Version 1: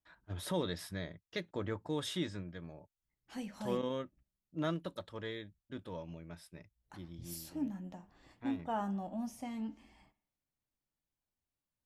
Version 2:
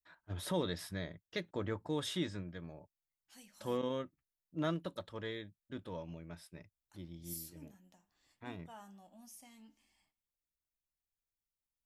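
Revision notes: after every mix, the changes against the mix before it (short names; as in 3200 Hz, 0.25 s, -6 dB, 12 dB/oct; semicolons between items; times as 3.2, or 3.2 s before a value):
second voice: add pre-emphasis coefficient 0.9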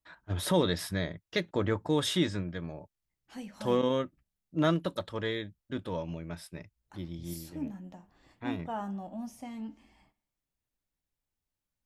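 first voice +9.0 dB; second voice: remove pre-emphasis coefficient 0.9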